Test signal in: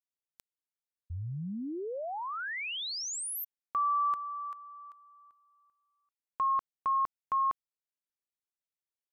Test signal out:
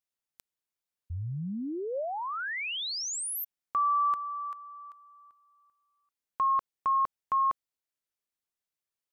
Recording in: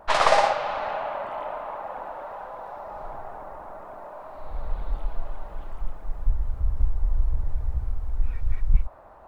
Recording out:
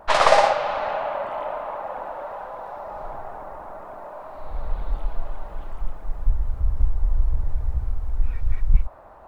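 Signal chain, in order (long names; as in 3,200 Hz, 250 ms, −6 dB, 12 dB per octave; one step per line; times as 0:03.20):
dynamic equaliser 560 Hz, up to +3 dB, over −42 dBFS, Q 4.4
level +2.5 dB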